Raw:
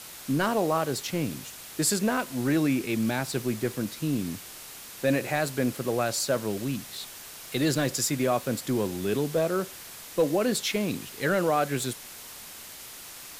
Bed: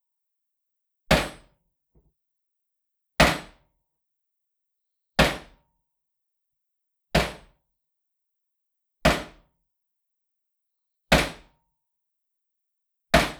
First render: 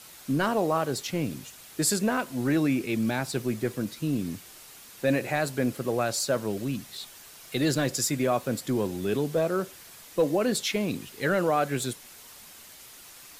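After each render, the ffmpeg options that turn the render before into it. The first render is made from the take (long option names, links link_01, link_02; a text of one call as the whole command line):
ffmpeg -i in.wav -af "afftdn=noise_reduction=6:noise_floor=-44" out.wav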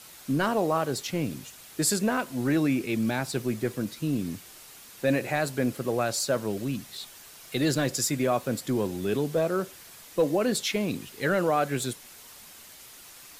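ffmpeg -i in.wav -af anull out.wav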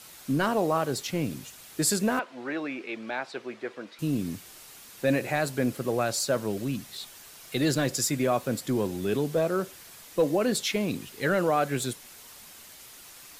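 ffmpeg -i in.wav -filter_complex "[0:a]asettb=1/sr,asplit=3[link_01][link_02][link_03];[link_01]atrim=end=2.194[link_04];[link_02]atrim=start=2.19:end=3.99,asetpts=PTS-STARTPTS,afade=type=in:duration=0.004:curve=qsin,afade=type=out:start_time=1.796:duration=0.004:curve=qsin,highpass=510,lowpass=3000[link_05];[link_03]atrim=start=3.986[link_06];[link_04][link_05]acrossfade=duration=0.004:curve1=hsin:curve2=qsin[link_07];[link_07][link_06]acrossfade=duration=0.004:curve1=qsin:curve2=hsin" out.wav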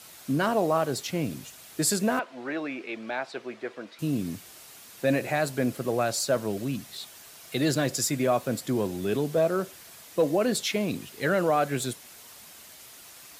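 ffmpeg -i in.wav -af "highpass=55,equalizer=frequency=660:width=7.8:gain=4.5" out.wav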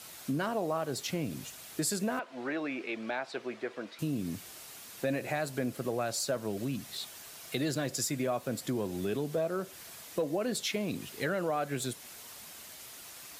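ffmpeg -i in.wav -af "acompressor=threshold=-32dB:ratio=2.5" out.wav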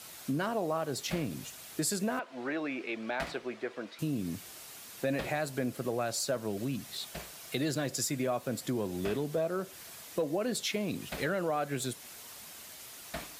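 ffmpeg -i in.wav -i bed.wav -filter_complex "[1:a]volume=-22.5dB[link_01];[0:a][link_01]amix=inputs=2:normalize=0" out.wav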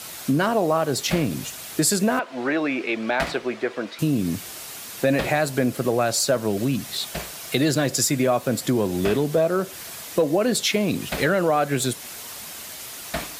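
ffmpeg -i in.wav -af "volume=11.5dB" out.wav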